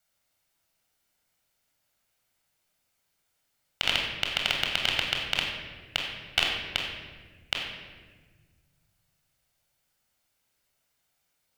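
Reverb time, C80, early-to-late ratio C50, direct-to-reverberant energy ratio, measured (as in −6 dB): 1.4 s, 4.0 dB, 2.0 dB, −0.5 dB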